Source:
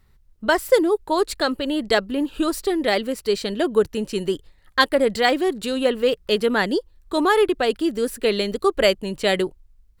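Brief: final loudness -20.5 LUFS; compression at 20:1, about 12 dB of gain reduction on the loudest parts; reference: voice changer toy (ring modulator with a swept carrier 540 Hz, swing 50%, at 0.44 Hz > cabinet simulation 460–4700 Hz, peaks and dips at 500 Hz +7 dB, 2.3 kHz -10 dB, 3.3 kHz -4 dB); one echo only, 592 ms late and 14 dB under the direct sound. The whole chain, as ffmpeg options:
-af "acompressor=threshold=0.0708:ratio=20,aecho=1:1:592:0.2,aeval=exprs='val(0)*sin(2*PI*540*n/s+540*0.5/0.44*sin(2*PI*0.44*n/s))':c=same,highpass=460,equalizer=f=500:t=q:w=4:g=7,equalizer=f=2300:t=q:w=4:g=-10,equalizer=f=3300:t=q:w=4:g=-4,lowpass=f=4700:w=0.5412,lowpass=f=4700:w=1.3066,volume=4.47"

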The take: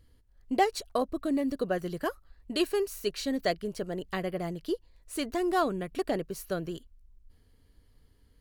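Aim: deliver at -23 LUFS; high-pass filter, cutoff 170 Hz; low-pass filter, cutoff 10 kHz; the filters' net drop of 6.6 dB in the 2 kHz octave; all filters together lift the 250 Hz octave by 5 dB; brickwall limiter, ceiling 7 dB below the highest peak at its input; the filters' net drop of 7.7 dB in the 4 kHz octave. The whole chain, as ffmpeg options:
-af "highpass=170,lowpass=10000,equalizer=f=250:t=o:g=7.5,equalizer=f=2000:t=o:g=-7,equalizer=f=4000:t=o:g=-7.5,volume=2.51,alimiter=limit=0.251:level=0:latency=1"

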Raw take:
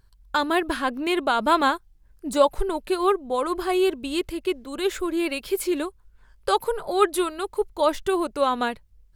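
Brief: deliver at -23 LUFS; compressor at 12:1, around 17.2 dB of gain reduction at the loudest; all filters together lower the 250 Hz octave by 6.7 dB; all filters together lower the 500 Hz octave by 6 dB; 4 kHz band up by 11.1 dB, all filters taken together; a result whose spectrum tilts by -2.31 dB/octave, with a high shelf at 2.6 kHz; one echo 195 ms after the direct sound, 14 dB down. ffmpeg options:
-af "equalizer=f=250:t=o:g=-7,equalizer=f=500:t=o:g=-6,highshelf=f=2600:g=7.5,equalizer=f=4000:t=o:g=7.5,acompressor=threshold=0.0282:ratio=12,aecho=1:1:195:0.2,volume=3.76"

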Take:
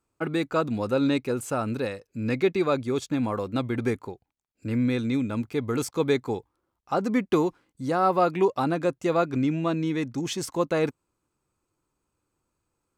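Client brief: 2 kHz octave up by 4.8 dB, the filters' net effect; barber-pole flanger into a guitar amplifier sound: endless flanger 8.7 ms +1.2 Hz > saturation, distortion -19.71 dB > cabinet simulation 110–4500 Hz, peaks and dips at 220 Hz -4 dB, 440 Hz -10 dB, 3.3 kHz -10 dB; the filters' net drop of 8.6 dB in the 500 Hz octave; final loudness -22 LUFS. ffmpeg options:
-filter_complex "[0:a]equalizer=f=500:t=o:g=-6.5,equalizer=f=2000:t=o:g=7.5,asplit=2[s0][s1];[s1]adelay=8.7,afreqshift=1.2[s2];[s0][s2]amix=inputs=2:normalize=1,asoftclip=threshold=0.1,highpass=110,equalizer=f=220:t=q:w=4:g=-4,equalizer=f=440:t=q:w=4:g=-10,equalizer=f=3300:t=q:w=4:g=-10,lowpass=f=4500:w=0.5412,lowpass=f=4500:w=1.3066,volume=3.98"

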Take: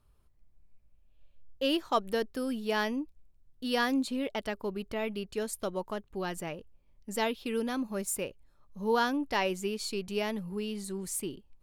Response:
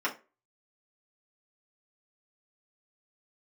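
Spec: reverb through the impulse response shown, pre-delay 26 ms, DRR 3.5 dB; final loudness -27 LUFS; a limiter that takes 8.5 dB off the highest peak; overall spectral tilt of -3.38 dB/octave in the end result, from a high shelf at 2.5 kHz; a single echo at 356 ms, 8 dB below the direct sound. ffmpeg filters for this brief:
-filter_complex "[0:a]highshelf=f=2500:g=3,alimiter=limit=0.075:level=0:latency=1,aecho=1:1:356:0.398,asplit=2[s0][s1];[1:a]atrim=start_sample=2205,adelay=26[s2];[s1][s2]afir=irnorm=-1:irlink=0,volume=0.237[s3];[s0][s3]amix=inputs=2:normalize=0,volume=2"

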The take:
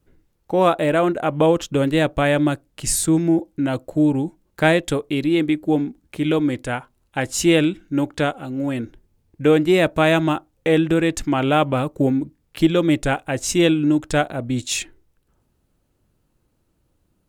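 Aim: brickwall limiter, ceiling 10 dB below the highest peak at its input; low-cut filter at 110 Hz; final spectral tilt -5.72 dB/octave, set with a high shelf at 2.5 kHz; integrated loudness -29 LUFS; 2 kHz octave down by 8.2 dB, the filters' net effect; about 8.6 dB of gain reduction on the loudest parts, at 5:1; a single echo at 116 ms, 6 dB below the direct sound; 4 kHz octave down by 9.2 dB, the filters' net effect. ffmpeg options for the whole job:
-af "highpass=110,equalizer=f=2000:t=o:g=-8,highshelf=f=2500:g=-3.5,equalizer=f=4000:t=o:g=-6,acompressor=threshold=0.0891:ratio=5,alimiter=limit=0.0944:level=0:latency=1,aecho=1:1:116:0.501"

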